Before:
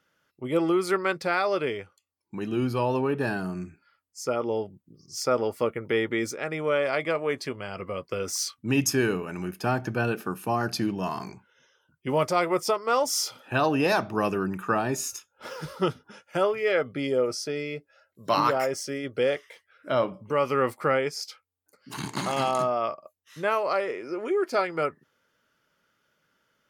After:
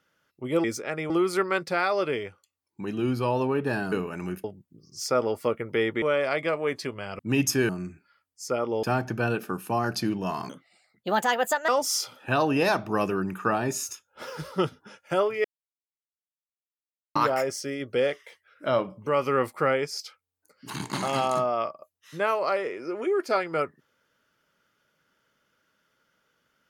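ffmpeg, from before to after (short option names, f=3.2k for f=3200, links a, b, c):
-filter_complex "[0:a]asplit=13[a][b][c][d][e][f][g][h][i][j][k][l][m];[a]atrim=end=0.642[n];[b]atrim=start=6.178:end=6.642[o];[c]atrim=start=0.638:end=3.462[p];[d]atrim=start=9.078:end=9.602[q];[e]atrim=start=4.598:end=6.182[r];[f]atrim=start=6.638:end=7.812[s];[g]atrim=start=8.578:end=9.082[t];[h]atrim=start=3.458:end=4.602[u];[i]atrim=start=9.598:end=11.264[v];[j]atrim=start=11.26:end=12.92,asetpts=PTS-STARTPTS,asetrate=61299,aresample=44100,atrim=end_sample=52666,asetpts=PTS-STARTPTS[w];[k]atrim=start=12.916:end=16.68,asetpts=PTS-STARTPTS,afade=t=out:st=3.76:d=0.004:c=hsin[x];[l]atrim=start=16.68:end=18.39,asetpts=PTS-STARTPTS,volume=0[y];[m]atrim=start=18.39,asetpts=PTS-STARTPTS,afade=t=in:d=0.004:c=hsin[z];[n][o]acrossfade=d=0.004:c1=hsin:c2=hsin[aa];[aa][p]acrossfade=d=0.004:c1=hsin:c2=hsin[ab];[ab][q]acrossfade=d=0.004:c1=hsin:c2=hsin[ac];[ac][r]acrossfade=d=0.004:c1=hsin:c2=hsin[ad];[ad][s]acrossfade=d=0.004:c1=hsin:c2=hsin[ae];[ae][t]acrossfade=d=0.004:c1=hsin:c2=hsin[af];[af][u]acrossfade=d=0.004:c1=hsin:c2=hsin[ag];[ag][v]acrossfade=d=0.004:c1=hsin:c2=hsin[ah];[ah][w]acrossfade=d=0.004:c1=hsin:c2=hsin[ai];[x][y][z]concat=n=3:v=0:a=1[aj];[ai][aj]acrossfade=d=0.004:c1=hsin:c2=hsin"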